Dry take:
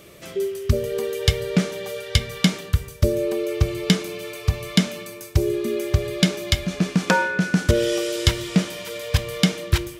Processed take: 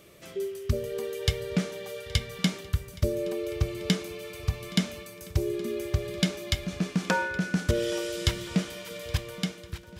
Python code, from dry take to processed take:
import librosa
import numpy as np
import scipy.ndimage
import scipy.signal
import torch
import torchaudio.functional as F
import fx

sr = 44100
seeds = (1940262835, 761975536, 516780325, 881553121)

y = fx.fade_out_tail(x, sr, length_s=0.96)
y = fx.echo_swing(y, sr, ms=1367, ratio=1.5, feedback_pct=42, wet_db=-21.0)
y = y * librosa.db_to_amplitude(-7.5)